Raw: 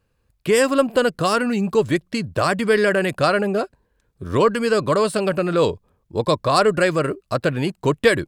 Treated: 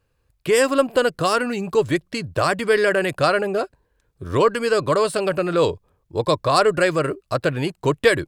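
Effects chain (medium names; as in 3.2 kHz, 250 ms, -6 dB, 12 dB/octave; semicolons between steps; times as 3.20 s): peaking EQ 210 Hz -8.5 dB 0.41 oct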